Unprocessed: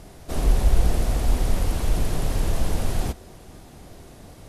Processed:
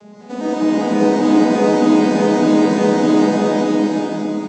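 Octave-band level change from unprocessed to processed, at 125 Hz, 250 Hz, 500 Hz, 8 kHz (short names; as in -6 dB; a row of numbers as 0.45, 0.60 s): -1.0, +21.5, +18.5, +3.0 dB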